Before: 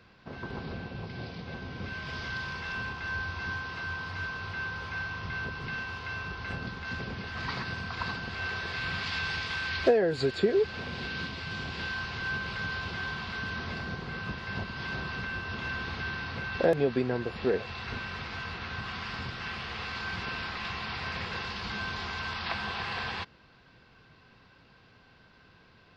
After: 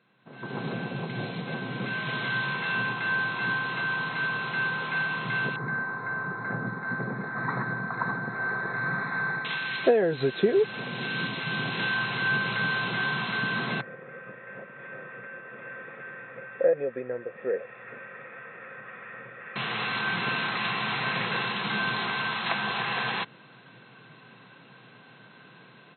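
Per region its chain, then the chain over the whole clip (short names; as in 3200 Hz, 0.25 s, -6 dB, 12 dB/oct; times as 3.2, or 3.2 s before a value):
5.56–9.45 Chebyshev band-stop 1700–5300 Hz + air absorption 150 m
13.81–19.56 vocal tract filter e + bell 1300 Hz +14.5 dB 0.45 oct
whole clip: FFT band-pass 110–4200 Hz; AGC gain up to 16.5 dB; gain -9 dB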